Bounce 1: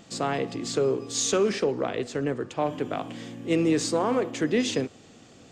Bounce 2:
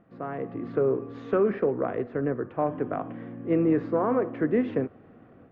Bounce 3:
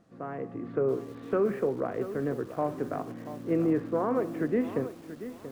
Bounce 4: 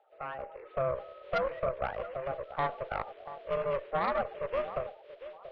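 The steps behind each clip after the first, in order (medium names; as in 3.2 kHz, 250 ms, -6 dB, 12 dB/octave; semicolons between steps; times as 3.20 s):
low-pass 1.7 kHz 24 dB/octave; band-stop 860 Hz, Q 12; level rider gain up to 8 dB; trim -7.5 dB
added noise blue -66 dBFS; distance through air 96 m; bit-crushed delay 683 ms, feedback 35%, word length 7-bit, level -12 dB; trim -3 dB
coarse spectral quantiser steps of 30 dB; mistuned SSB +110 Hz 440–3300 Hz; Chebyshev shaper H 4 -13 dB, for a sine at -19.5 dBFS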